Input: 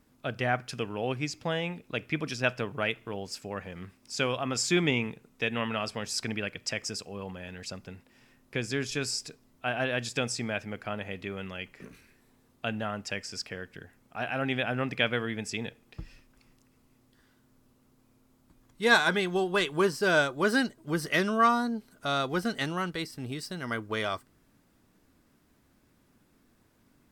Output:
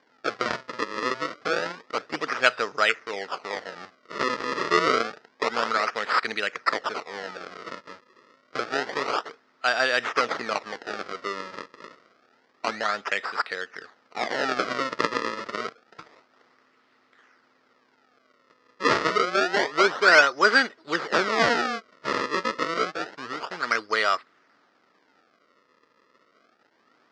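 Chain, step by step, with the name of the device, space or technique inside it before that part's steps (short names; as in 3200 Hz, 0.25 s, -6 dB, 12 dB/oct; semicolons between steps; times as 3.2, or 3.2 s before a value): circuit-bent sampling toy (decimation with a swept rate 33×, swing 160% 0.28 Hz; speaker cabinet 440–5700 Hz, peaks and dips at 460 Hz +3 dB, 1300 Hz +10 dB, 1900 Hz +7 dB, 4900 Hz +6 dB); gain +5 dB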